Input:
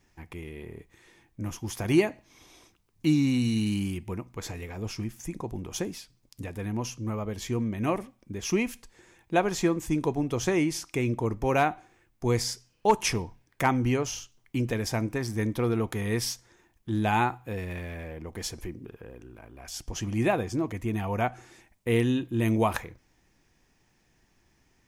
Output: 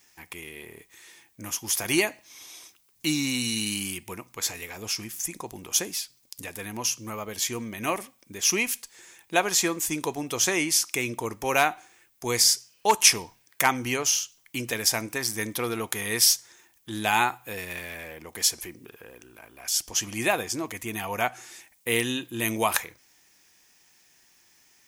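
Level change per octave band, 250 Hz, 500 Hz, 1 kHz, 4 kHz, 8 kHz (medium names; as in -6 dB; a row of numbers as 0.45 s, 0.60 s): -5.0 dB, -2.0 dB, +1.5 dB, +11.0 dB, +13.5 dB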